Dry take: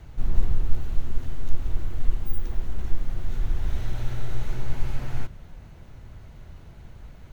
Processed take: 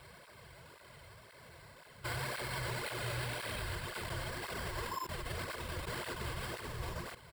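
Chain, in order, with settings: reverse the whole clip; high-pass 240 Hz 6 dB/octave; tilt shelf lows -5.5 dB, about 690 Hz; band-stop 2.6 kHz, Q 7.3; comb 1.9 ms, depth 54%; compression 4:1, threshold -45 dBFS, peak gain reduction 10.5 dB; sample-and-hold 7×; level held to a coarse grid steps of 17 dB; cancelling through-zero flanger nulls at 1.9 Hz, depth 5.2 ms; trim +15.5 dB

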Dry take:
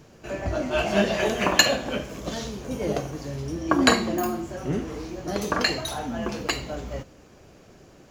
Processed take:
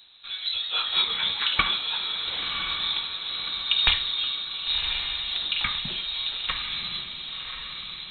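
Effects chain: frequency inversion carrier 4 kHz; echo that smears into a reverb 1081 ms, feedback 52%, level -5.5 dB; trim -3 dB

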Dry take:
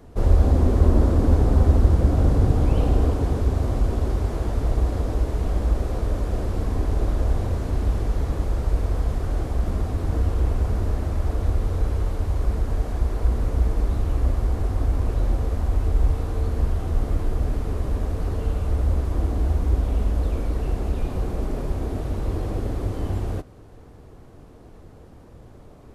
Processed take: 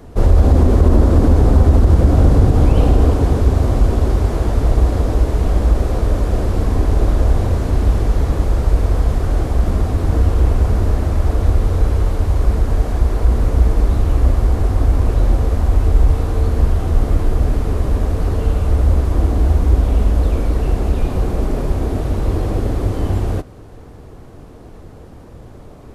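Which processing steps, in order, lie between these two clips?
loudness maximiser +9 dB; trim -1 dB

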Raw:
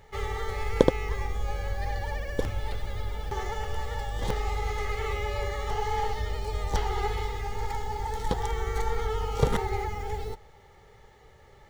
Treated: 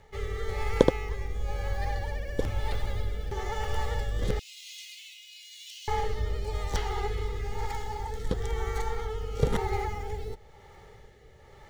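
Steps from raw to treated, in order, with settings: 4.39–5.88 s: Chebyshev high-pass 2.6 kHz, order 5; gain riding within 5 dB 2 s; rotary cabinet horn 1 Hz

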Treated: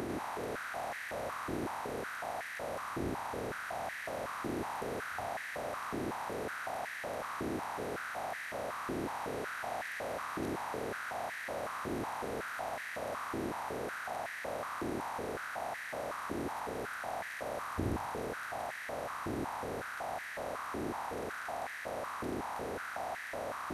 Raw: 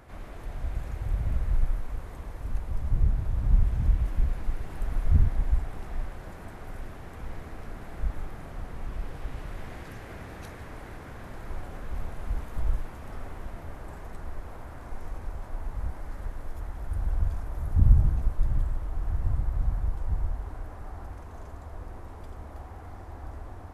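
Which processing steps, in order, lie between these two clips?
spectral levelling over time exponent 0.2; spectral noise reduction 8 dB; step-sequenced high-pass 5.4 Hz 350–1800 Hz; trim +4 dB

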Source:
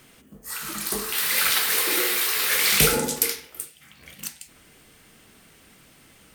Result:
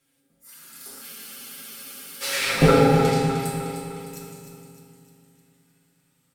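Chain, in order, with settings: single-diode clipper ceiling -15 dBFS; Doppler pass-by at 2.68 s, 23 m/s, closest 1.5 m; low-pass that closes with the level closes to 900 Hz, closed at -26.5 dBFS; treble shelf 4.6 kHz +8 dB; comb 7.4 ms, depth 84%; feedback delay 305 ms, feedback 51%, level -8.5 dB; reverberation RT60 2.4 s, pre-delay 3 ms, DRR -2.5 dB; spectral freeze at 1.05 s, 1.17 s; trim +8 dB

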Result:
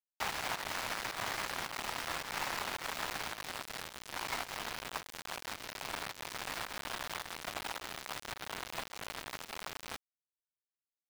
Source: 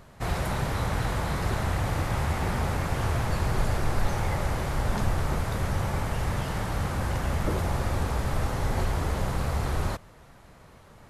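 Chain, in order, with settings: dynamic bell 930 Hz, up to -5 dB, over -45 dBFS, Q 0.78; compression 2:1, threshold -44 dBFS, peak gain reduction 14 dB; mistuned SSB +120 Hz 590–2900 Hz; small samples zeroed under -44.5 dBFS; volume shaper 108 bpm, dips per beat 1, -12 dB, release 132 ms; trim +14 dB

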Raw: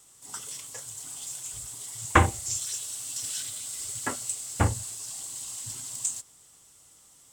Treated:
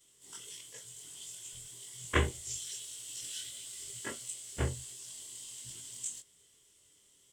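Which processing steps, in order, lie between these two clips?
short-time spectra conjugated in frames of 50 ms; graphic EQ with 31 bands 400 Hz +9 dB, 800 Hz -10 dB, 1.25 kHz -7 dB, 2 kHz +4 dB, 3.15 kHz +10 dB, 16 kHz -6 dB; trim -6 dB

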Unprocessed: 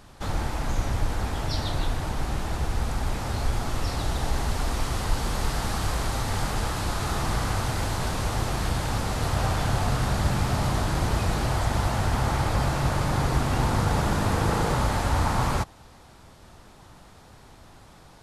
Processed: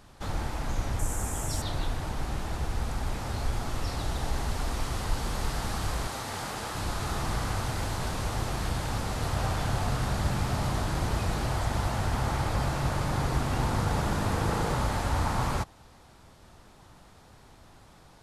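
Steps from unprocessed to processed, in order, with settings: 0.99–1.62 s: resonant high shelf 5.8 kHz +10 dB, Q 3; 6.07–6.75 s: high-pass 250 Hz 6 dB/octave; trim -4 dB

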